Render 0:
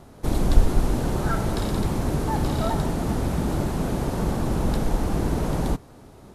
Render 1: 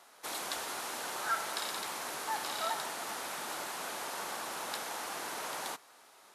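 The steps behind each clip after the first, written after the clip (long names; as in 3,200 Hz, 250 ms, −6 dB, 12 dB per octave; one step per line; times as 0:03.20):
high-pass filter 1,200 Hz 12 dB per octave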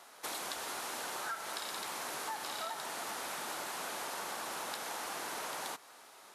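downward compressor 6 to 1, threshold −40 dBFS, peak gain reduction 12 dB
level +3 dB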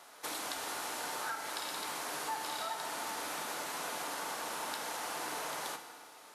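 feedback delay network reverb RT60 1.6 s, low-frequency decay 1.05×, high-frequency decay 0.75×, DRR 5.5 dB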